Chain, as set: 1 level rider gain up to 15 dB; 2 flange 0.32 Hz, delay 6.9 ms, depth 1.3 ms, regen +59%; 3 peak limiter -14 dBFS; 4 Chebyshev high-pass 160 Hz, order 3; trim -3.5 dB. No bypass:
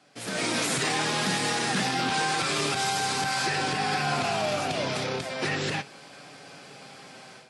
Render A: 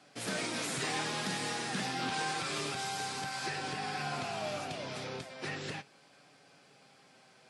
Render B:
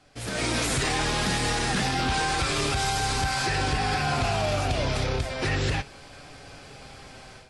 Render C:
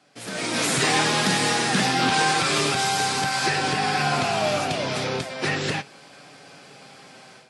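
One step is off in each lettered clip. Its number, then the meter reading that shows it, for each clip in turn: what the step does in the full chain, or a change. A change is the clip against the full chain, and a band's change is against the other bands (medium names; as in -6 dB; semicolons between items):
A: 1, crest factor change +1.5 dB; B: 4, 125 Hz band +7.0 dB; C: 3, mean gain reduction 3.0 dB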